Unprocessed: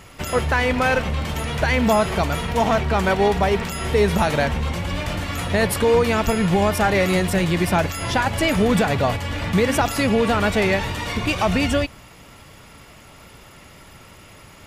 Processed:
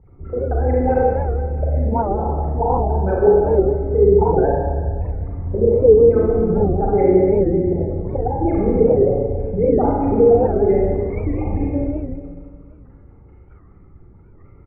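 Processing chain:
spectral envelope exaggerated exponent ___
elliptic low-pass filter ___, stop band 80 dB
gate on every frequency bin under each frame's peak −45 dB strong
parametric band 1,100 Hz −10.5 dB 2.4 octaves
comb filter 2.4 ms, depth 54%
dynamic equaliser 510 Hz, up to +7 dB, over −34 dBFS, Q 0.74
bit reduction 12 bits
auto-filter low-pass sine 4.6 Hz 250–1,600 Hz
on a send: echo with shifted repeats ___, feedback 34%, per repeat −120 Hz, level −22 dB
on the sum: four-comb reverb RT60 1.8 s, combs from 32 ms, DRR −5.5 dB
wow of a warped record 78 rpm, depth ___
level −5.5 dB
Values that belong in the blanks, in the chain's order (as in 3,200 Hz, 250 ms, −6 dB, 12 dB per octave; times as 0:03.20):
3, 2,400 Hz, 289 ms, 160 cents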